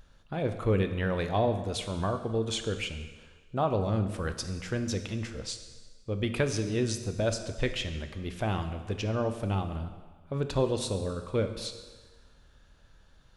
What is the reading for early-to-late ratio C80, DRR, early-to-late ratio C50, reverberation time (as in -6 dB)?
11.0 dB, 7.0 dB, 9.5 dB, 1.5 s